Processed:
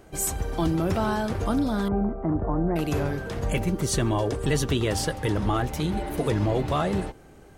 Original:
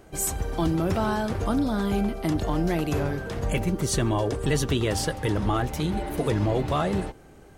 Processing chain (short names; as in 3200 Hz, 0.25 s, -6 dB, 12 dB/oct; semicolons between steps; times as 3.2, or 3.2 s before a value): 1.88–2.76 inverse Chebyshev low-pass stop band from 5600 Hz, stop band 70 dB